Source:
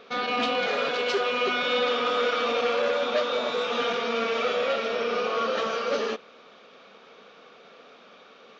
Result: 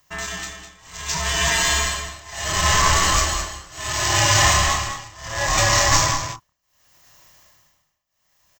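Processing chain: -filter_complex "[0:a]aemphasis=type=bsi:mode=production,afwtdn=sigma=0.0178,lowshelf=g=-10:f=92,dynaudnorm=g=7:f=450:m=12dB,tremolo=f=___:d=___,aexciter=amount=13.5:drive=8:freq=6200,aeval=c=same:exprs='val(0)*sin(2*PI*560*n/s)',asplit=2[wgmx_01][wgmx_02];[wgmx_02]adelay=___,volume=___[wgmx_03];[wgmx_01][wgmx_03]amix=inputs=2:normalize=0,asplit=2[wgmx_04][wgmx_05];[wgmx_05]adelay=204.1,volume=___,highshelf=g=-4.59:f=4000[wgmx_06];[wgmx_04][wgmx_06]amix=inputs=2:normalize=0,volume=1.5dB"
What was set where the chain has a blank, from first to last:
0.69, 0.99, 28, -6dB, -7dB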